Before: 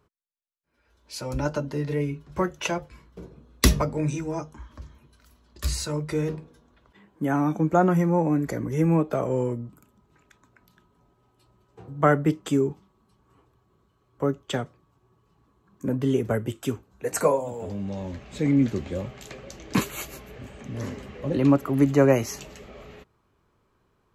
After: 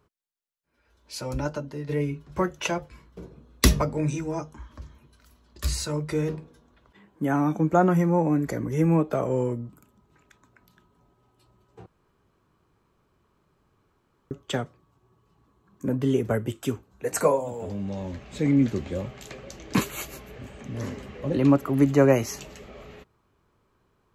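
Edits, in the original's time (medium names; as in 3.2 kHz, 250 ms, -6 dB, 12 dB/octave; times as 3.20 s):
1.30–1.89 s: fade out quadratic, to -6.5 dB
11.86–14.31 s: room tone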